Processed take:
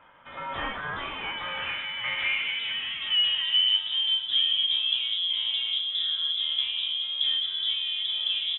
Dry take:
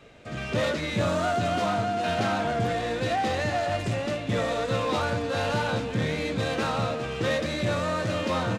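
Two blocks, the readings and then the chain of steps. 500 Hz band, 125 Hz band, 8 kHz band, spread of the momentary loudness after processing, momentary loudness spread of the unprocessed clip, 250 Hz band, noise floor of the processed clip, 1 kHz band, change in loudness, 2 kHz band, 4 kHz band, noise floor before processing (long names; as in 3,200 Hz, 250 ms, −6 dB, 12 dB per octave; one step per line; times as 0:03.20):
below −20 dB, below −20 dB, below −40 dB, 11 LU, 3 LU, below −20 dB, −36 dBFS, −11.5 dB, +2.0 dB, −1.0 dB, +14.5 dB, −34 dBFS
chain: band-pass filter sweep 2,800 Hz → 380 Hz, 0:01.12–0:04.86
voice inversion scrambler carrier 3,700 Hz
level +6.5 dB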